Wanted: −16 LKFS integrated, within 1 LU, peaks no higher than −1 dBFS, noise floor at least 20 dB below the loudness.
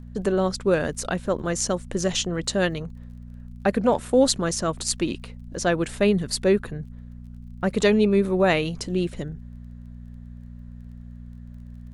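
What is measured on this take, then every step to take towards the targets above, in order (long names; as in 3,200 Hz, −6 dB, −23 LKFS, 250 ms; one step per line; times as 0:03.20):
crackle rate 26 per second; mains hum 60 Hz; hum harmonics up to 240 Hz; level of the hum −38 dBFS; integrated loudness −23.5 LKFS; sample peak −4.0 dBFS; target loudness −16.0 LKFS
→ click removal
hum removal 60 Hz, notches 4
level +7.5 dB
brickwall limiter −1 dBFS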